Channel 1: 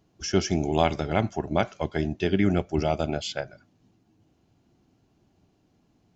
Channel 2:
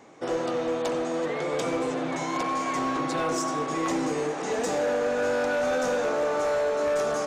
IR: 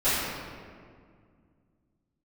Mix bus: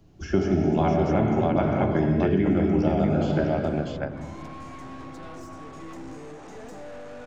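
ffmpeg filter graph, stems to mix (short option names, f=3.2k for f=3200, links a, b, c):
-filter_complex "[0:a]volume=2dB,asplit=3[a][b][c];[b]volume=-13dB[d];[c]volume=-3dB[e];[1:a]bandreject=f=470:w=12,aeval=exprs='(tanh(28.2*val(0)+0.25)-tanh(0.25))/28.2':c=same,adelay=2050,volume=-10dB[f];[2:a]atrim=start_sample=2205[g];[d][g]afir=irnorm=-1:irlink=0[h];[e]aecho=0:1:645:1[i];[a][f][h][i]amix=inputs=4:normalize=0,lowshelf=f=190:g=10.5,acrossover=split=140|2100[j][k][l];[j]acompressor=threshold=-36dB:ratio=4[m];[k]acompressor=threshold=-20dB:ratio=4[n];[l]acompressor=threshold=-54dB:ratio=4[o];[m][n][o]amix=inputs=3:normalize=0"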